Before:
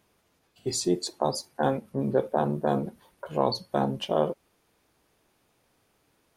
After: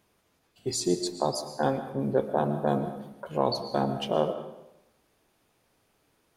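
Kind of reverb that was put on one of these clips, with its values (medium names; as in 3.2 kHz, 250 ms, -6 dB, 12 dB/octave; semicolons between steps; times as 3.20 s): algorithmic reverb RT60 0.88 s, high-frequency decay 0.9×, pre-delay 80 ms, DRR 9.5 dB; trim -1 dB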